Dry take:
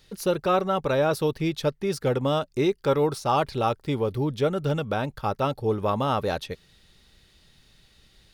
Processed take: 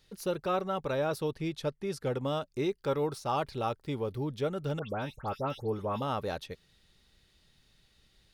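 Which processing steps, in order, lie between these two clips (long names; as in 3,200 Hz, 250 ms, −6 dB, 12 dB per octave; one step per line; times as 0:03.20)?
0:01.20–0:02.13: Chebyshev low-pass filter 12,000 Hz, order 5
0:04.79–0:06.02: all-pass dispersion highs, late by 114 ms, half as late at 2,600 Hz
level −8 dB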